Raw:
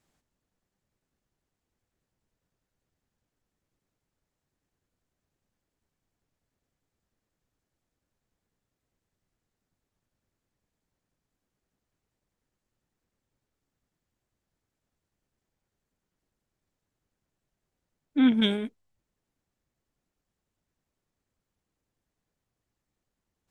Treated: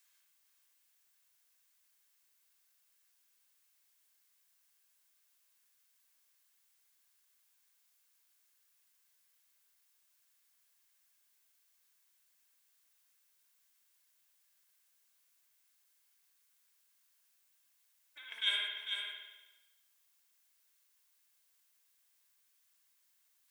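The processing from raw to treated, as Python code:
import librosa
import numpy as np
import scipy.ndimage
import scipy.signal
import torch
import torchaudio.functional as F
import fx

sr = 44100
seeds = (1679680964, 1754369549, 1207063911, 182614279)

p1 = fx.over_compress(x, sr, threshold_db=-25.0, ratio=-0.5)
p2 = scipy.signal.sosfilt(scipy.signal.bessel(4, 1900.0, 'highpass', norm='mag', fs=sr, output='sos'), p1)
p3 = p2 + 0.48 * np.pad(p2, (int(1.9 * sr / 1000.0), 0))[:len(p2)]
p4 = p3 + fx.echo_single(p3, sr, ms=449, db=-6.5, dry=0)
p5 = fx.rev_spring(p4, sr, rt60_s=1.1, pass_ms=(54,), chirp_ms=30, drr_db=0.5)
y = fx.dmg_noise_colour(p5, sr, seeds[0], colour='blue', level_db=-74.0)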